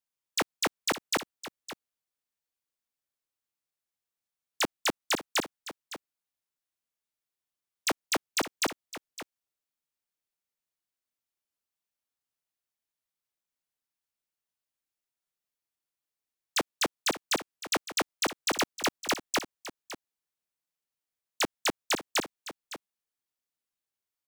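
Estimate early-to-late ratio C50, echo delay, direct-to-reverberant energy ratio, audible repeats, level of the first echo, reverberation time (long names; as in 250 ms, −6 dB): no reverb audible, 560 ms, no reverb audible, 1, −13.5 dB, no reverb audible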